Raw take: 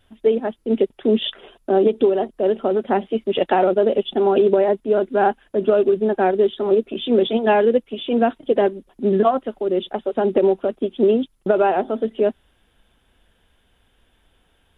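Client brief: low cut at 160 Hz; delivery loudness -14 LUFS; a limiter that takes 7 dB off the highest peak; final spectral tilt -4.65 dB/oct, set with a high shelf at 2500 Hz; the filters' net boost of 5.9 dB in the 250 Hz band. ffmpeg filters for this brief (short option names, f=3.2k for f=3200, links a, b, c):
-af "highpass=160,equalizer=f=250:t=o:g=8.5,highshelf=f=2.5k:g=-5.5,volume=4dB,alimiter=limit=-3.5dB:level=0:latency=1"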